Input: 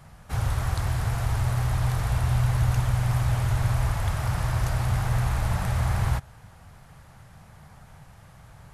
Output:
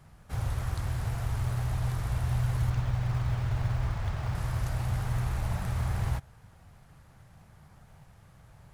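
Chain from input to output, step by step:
0:02.70–0:04.35: low-pass filter 5,100 Hz 12 dB per octave
in parallel at −8.5 dB: sample-and-hold swept by an LFO 33×, swing 60% 1.6 Hz
on the sum: level −8 dB

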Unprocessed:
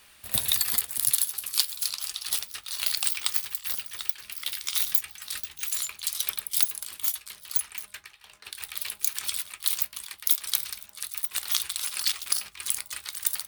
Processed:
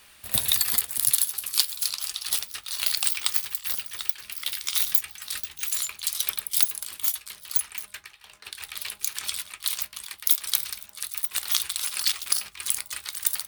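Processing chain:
0:08.49–0:10.04: high-shelf EQ 12,000 Hz −7.5 dB
level +2 dB

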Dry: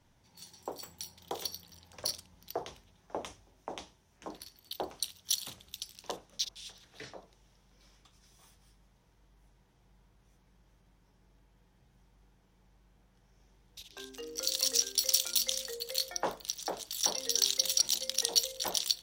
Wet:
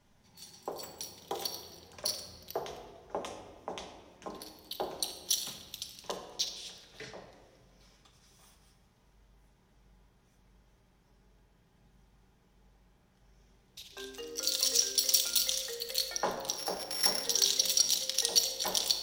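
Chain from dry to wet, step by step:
0:16.57–0:17.24: samples sorted by size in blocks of 8 samples
rectangular room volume 2,000 cubic metres, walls mixed, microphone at 1.3 metres

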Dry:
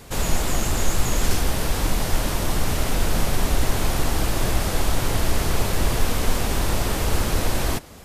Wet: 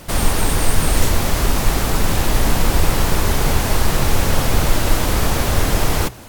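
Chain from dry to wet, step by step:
speed change +28%
mains-hum notches 60/120 Hz
level +5 dB

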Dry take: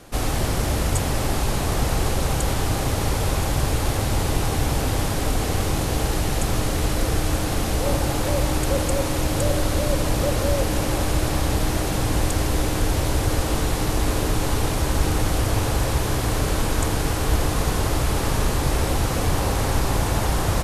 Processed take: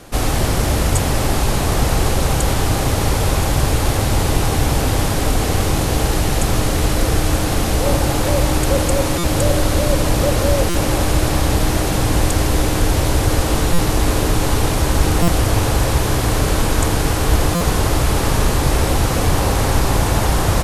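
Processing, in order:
buffer that repeats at 0:09.18/0:10.69/0:13.73/0:15.22/0:17.55, samples 256, times 9
level +5.5 dB

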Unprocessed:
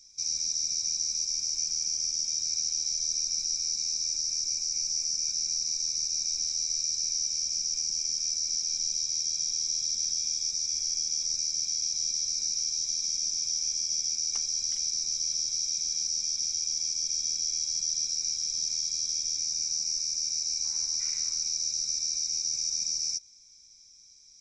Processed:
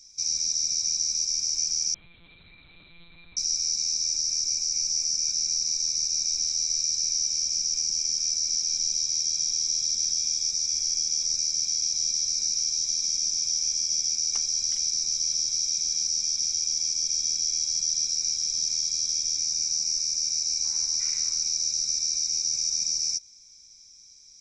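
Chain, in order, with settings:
0:01.94–0:03.37: one-pitch LPC vocoder at 8 kHz 170 Hz
level +3.5 dB

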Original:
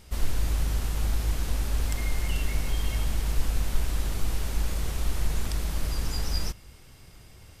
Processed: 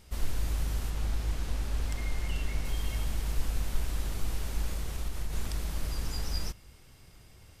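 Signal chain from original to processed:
0:00.90–0:02.65: high-shelf EQ 9,300 Hz −8.5 dB
0:04.75–0:05.33: downward compressor, threshold −23 dBFS, peak gain reduction 5 dB
level −4.5 dB

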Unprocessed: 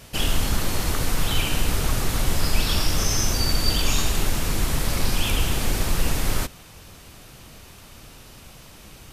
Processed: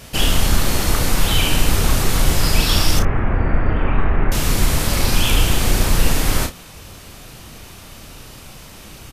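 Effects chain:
0:02.99–0:04.32: Butterworth low-pass 2,100 Hz 36 dB per octave
ambience of single reflections 33 ms −6.5 dB, 57 ms −17.5 dB
level +5.5 dB

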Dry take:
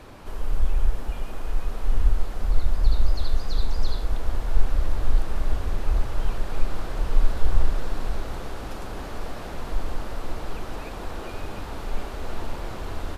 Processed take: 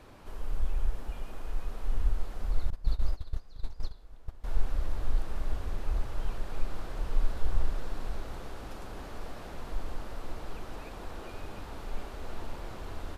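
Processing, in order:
0:02.70–0:04.44: noise gate −14 dBFS, range −18 dB
level −8 dB

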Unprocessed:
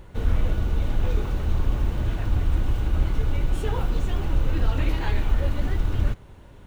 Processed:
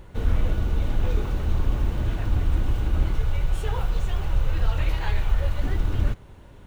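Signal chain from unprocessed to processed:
0:03.16–0:05.63: parametric band 270 Hz −13.5 dB 0.78 octaves

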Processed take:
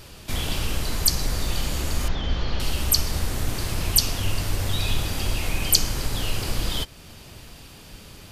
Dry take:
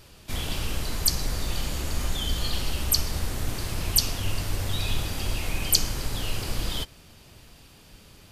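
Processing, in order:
0:02.08–0:02.60: linear delta modulator 32 kbit/s, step −42.5 dBFS
in parallel at −2 dB: downward compressor, threshold −39 dBFS, peak gain reduction 22.5 dB
on the sum: level +2 dB

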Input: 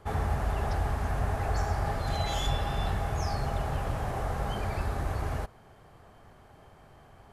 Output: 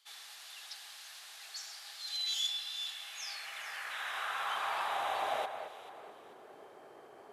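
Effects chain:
high-pass filter sweep 3,800 Hz → 390 Hz, 0:02.76–0:06.13
sound drawn into the spectrogram noise, 0:03.90–0:05.46, 990–4,000 Hz −44 dBFS
delay that swaps between a low-pass and a high-pass 219 ms, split 2,400 Hz, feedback 58%, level −8 dB
level −1.5 dB

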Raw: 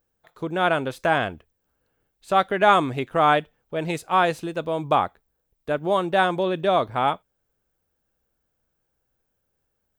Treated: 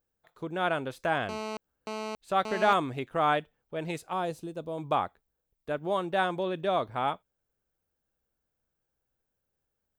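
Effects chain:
0:01.29–0:02.73: phone interference −28 dBFS
0:04.13–0:04.78: parametric band 1,900 Hz −11.5 dB 2 octaves
level −7.5 dB

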